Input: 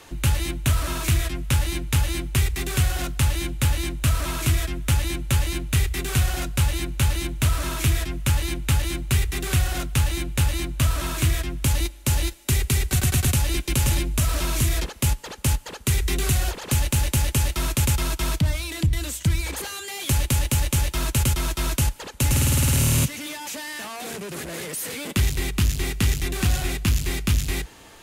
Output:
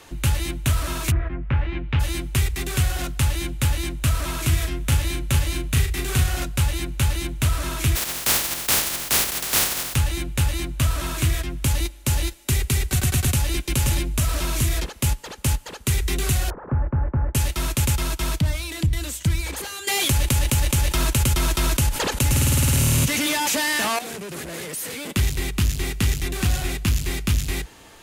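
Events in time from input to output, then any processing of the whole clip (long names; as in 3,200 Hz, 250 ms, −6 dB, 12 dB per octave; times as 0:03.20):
0:01.10–0:01.99: low-pass filter 1,600 Hz → 3,200 Hz 24 dB per octave
0:04.48–0:06.44: double-tracking delay 37 ms −6 dB
0:07.95–0:09.94: compressing power law on the bin magnitudes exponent 0.11
0:16.50–0:17.35: Butterworth low-pass 1,500 Hz
0:19.87–0:23.99: envelope flattener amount 70%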